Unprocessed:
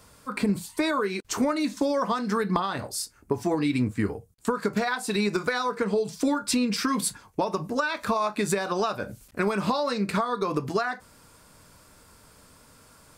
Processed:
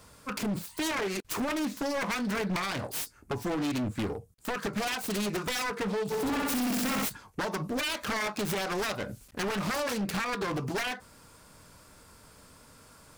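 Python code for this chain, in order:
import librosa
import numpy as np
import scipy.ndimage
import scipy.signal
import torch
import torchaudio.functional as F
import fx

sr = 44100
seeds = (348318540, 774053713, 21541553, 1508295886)

y = fx.self_delay(x, sr, depth_ms=0.66)
y = fx.room_flutter(y, sr, wall_m=11.0, rt60_s=1.3, at=(6.1, 7.04), fade=0.02)
y = np.clip(y, -10.0 ** (-27.5 / 20.0), 10.0 ** (-27.5 / 20.0))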